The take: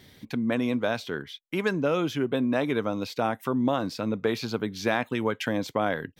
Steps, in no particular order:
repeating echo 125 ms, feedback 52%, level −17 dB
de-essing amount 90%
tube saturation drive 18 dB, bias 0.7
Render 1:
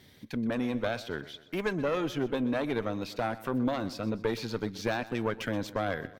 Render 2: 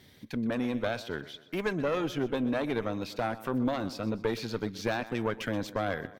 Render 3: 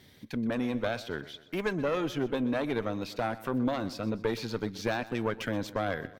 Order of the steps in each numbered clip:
tube saturation, then repeating echo, then de-essing
repeating echo, then tube saturation, then de-essing
tube saturation, then de-essing, then repeating echo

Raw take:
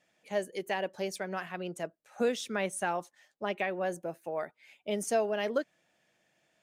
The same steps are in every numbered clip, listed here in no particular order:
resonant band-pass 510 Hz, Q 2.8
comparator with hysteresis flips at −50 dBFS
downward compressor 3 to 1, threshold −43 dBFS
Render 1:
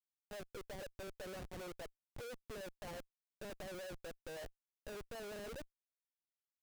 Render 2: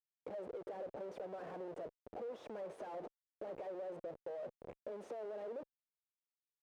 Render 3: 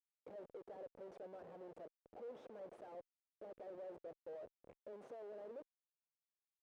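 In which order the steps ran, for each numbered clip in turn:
resonant band-pass, then downward compressor, then comparator with hysteresis
comparator with hysteresis, then resonant band-pass, then downward compressor
downward compressor, then comparator with hysteresis, then resonant band-pass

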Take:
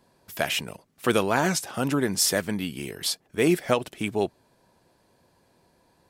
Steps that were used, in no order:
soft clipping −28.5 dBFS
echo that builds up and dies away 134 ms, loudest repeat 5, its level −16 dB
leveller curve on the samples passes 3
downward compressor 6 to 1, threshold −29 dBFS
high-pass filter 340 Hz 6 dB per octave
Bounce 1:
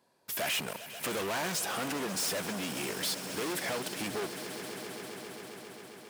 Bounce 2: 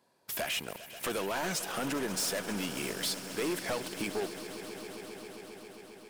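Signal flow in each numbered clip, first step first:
leveller curve on the samples, then soft clipping, then echo that builds up and dies away, then downward compressor, then high-pass filter
high-pass filter, then leveller curve on the samples, then downward compressor, then soft clipping, then echo that builds up and dies away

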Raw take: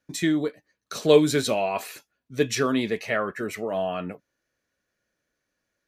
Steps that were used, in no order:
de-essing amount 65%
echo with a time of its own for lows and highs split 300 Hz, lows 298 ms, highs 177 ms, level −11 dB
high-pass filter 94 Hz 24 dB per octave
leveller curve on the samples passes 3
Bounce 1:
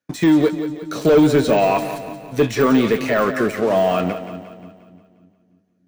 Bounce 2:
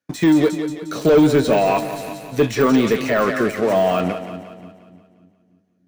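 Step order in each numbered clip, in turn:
high-pass filter, then leveller curve on the samples, then de-essing, then echo with a time of its own for lows and highs
high-pass filter, then leveller curve on the samples, then echo with a time of its own for lows and highs, then de-essing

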